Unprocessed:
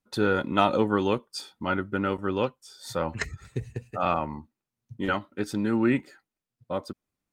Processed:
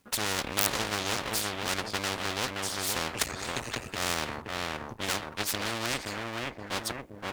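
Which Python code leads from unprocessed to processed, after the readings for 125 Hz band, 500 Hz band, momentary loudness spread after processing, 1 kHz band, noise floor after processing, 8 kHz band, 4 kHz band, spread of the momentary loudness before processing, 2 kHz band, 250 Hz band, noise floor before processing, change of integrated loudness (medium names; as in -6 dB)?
-6.0 dB, -8.5 dB, 7 LU, -4.5 dB, -47 dBFS, +15.0 dB, +8.0 dB, 13 LU, +1.0 dB, -11.0 dB, under -85 dBFS, -3.0 dB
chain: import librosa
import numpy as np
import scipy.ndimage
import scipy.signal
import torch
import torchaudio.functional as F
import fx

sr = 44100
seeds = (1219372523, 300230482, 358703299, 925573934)

p1 = (np.mod(10.0 ** (8.0 / 20.0) * x + 1.0, 2.0) - 1.0) / 10.0 ** (8.0 / 20.0)
p2 = x + (p1 * librosa.db_to_amplitude(-4.0))
p3 = fx.dynamic_eq(p2, sr, hz=500.0, q=1.1, threshold_db=-31.0, ratio=4.0, max_db=5)
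p4 = p3 + fx.echo_filtered(p3, sr, ms=523, feedback_pct=29, hz=1200.0, wet_db=-8, dry=0)
p5 = np.maximum(p4, 0.0)
p6 = scipy.signal.sosfilt(scipy.signal.butter(2, 51.0, 'highpass', fs=sr, output='sos'), p5)
y = fx.spectral_comp(p6, sr, ratio=4.0)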